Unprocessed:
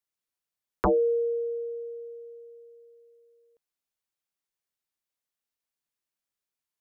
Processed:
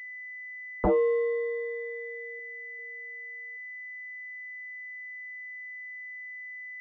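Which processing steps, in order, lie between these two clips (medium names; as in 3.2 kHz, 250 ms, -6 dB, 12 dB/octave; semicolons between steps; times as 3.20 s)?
2.39–2.79 s: peaking EQ 360 Hz -10.5 dB 0.64 oct; class-D stage that switches slowly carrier 2 kHz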